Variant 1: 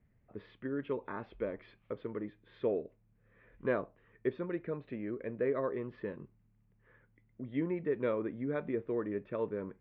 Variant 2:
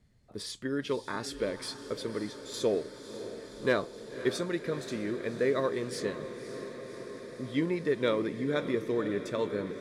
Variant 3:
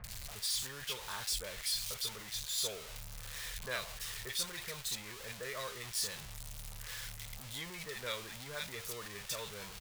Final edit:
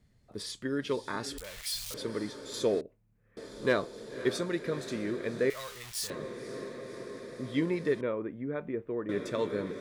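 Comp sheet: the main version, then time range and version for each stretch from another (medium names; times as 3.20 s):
2
1.38–1.94 s: from 3
2.81–3.37 s: from 1
5.50–6.10 s: from 3
8.01–9.09 s: from 1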